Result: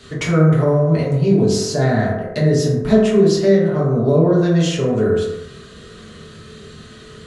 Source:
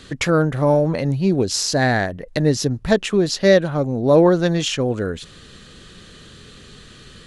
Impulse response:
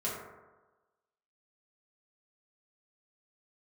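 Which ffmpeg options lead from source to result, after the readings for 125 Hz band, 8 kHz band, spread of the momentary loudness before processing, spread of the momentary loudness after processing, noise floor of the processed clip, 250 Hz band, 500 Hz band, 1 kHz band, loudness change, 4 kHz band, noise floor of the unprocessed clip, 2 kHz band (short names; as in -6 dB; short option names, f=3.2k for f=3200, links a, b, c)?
+5.5 dB, -3.0 dB, 8 LU, 5 LU, -40 dBFS, +3.5 dB, +2.0 dB, -2.0 dB, +2.5 dB, -3.0 dB, -44 dBFS, -3.5 dB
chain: -filter_complex "[0:a]acrossover=split=320[a][b];[b]acompressor=threshold=-22dB:ratio=10[c];[a][c]amix=inputs=2:normalize=0[d];[1:a]atrim=start_sample=2205,afade=t=out:st=0.39:d=0.01,atrim=end_sample=17640[e];[d][e]afir=irnorm=-1:irlink=0,volume=-1dB"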